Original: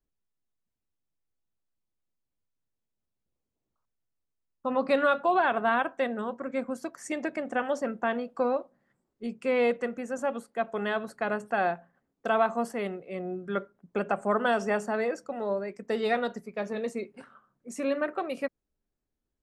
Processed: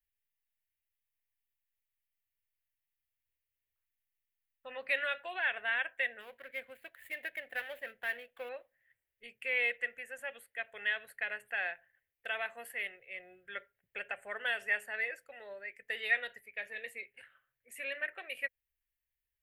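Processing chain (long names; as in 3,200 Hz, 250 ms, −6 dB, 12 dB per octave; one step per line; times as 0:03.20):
0:06.20–0:08.49: running median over 15 samples
drawn EQ curve 110 Hz 0 dB, 170 Hz −25 dB, 300 Hz −22 dB, 510 Hz −7 dB, 780 Hz −10 dB, 1,200 Hz −13 dB, 1,800 Hz +14 dB, 3,000 Hz +11 dB, 5,800 Hz −13 dB, 12,000 Hz +15 dB
level −8.5 dB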